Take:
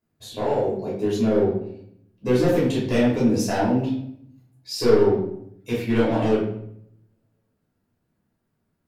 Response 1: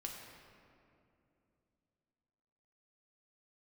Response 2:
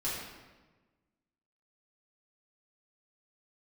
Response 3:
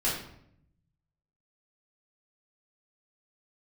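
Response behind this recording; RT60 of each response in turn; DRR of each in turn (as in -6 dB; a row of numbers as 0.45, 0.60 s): 3; 2.7, 1.3, 0.70 s; -0.5, -9.0, -8.5 dB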